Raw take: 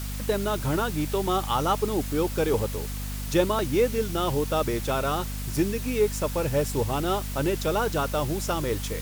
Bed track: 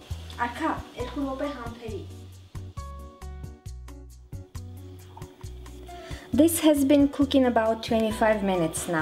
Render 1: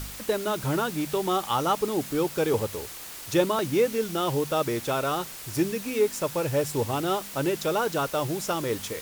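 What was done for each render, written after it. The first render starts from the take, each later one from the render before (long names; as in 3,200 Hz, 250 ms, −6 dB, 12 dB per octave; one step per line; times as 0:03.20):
hum removal 50 Hz, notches 5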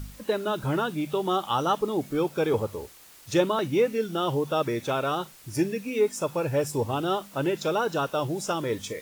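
noise reduction from a noise print 11 dB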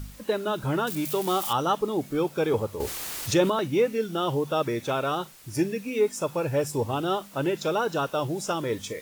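0:00.87–0:01.53: spike at every zero crossing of −24 dBFS
0:02.80–0:03.50: envelope flattener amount 50%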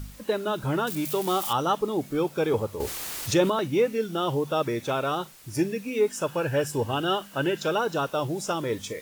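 0:06.09–0:07.77: hollow resonant body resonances 1,600/2,900 Hz, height 14 dB → 11 dB, ringing for 20 ms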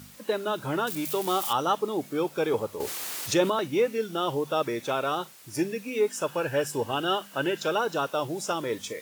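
high-pass filter 110 Hz
low-shelf EQ 210 Hz −7.5 dB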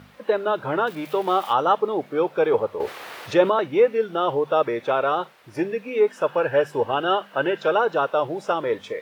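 drawn EQ curve 290 Hz 0 dB, 480 Hz +8 dB, 1,800 Hz +5 dB, 3,600 Hz −2 dB, 7,100 Hz −16 dB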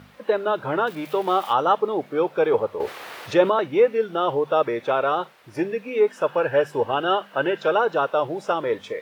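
no processing that can be heard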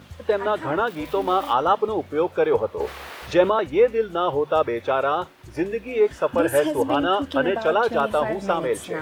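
mix in bed track −6.5 dB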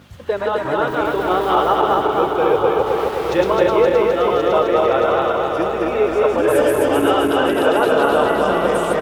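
feedback delay that plays each chunk backwards 130 ms, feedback 82%, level −1 dB
single-tap delay 1,076 ms −9 dB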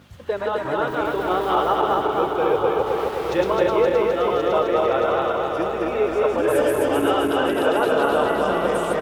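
level −4 dB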